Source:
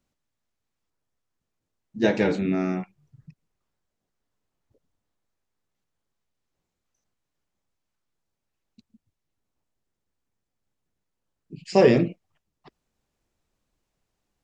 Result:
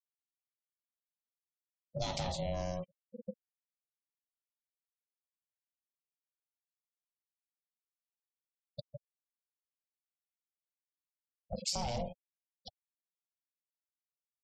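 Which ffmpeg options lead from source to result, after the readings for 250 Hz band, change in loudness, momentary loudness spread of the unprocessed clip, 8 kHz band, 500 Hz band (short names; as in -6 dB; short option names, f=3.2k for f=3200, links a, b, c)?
-20.5 dB, -17.0 dB, 11 LU, n/a, -18.0 dB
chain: -filter_complex "[0:a]aeval=exprs='if(lt(val(0),0),0.708*val(0),val(0))':c=same,acrossover=split=130|440|1400[a][b][c][d];[b]dynaudnorm=f=260:g=21:m=15dB[e];[d]aexciter=amount=4.4:drive=9.8:freq=3k[f];[a][e][c][f]amix=inputs=4:normalize=0,afftfilt=real='re*gte(hypot(re,im),0.02)':imag='im*gte(hypot(re,im),0.02)':win_size=1024:overlap=0.75,aeval=exprs='0.944*(cos(1*acos(clip(val(0)/0.944,-1,1)))-cos(1*PI/2))+0.0106*(cos(4*acos(clip(val(0)/0.944,-1,1)))-cos(4*PI/2))':c=same,alimiter=limit=-12dB:level=0:latency=1:release=18,aeval=exprs='val(0)*sin(2*PI*360*n/s)':c=same,acompressor=threshold=-37dB:ratio=5,volume=2dB"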